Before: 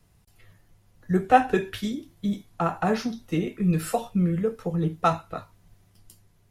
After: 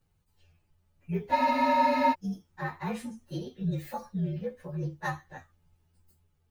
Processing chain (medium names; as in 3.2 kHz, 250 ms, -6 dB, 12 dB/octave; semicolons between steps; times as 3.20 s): frequency axis rescaled in octaves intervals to 118%; spectral freeze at 1.36 s, 0.77 s; trim -7 dB